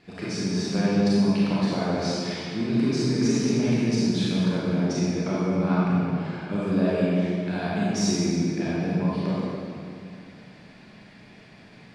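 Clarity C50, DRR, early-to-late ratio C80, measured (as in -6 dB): -5.0 dB, -8.0 dB, -2.0 dB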